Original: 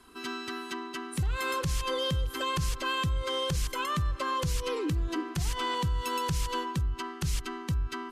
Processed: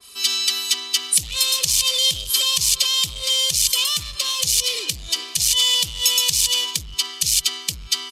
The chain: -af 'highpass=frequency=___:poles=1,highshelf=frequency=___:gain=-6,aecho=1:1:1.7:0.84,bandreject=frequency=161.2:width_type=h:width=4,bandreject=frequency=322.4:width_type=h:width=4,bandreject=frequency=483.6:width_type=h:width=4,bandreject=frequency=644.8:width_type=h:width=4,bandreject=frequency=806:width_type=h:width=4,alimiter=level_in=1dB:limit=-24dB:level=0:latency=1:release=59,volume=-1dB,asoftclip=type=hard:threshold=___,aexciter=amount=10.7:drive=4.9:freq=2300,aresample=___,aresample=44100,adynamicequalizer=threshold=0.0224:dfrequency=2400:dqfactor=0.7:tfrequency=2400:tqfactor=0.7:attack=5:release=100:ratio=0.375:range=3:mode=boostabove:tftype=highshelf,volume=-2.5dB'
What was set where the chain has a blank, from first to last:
87, 11000, -31dB, 32000